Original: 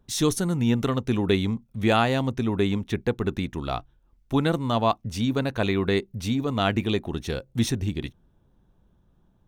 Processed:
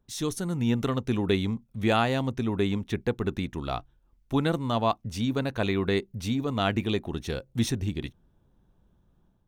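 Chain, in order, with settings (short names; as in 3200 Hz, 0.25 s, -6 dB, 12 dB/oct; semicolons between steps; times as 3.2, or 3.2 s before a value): AGC gain up to 6 dB; gain -8 dB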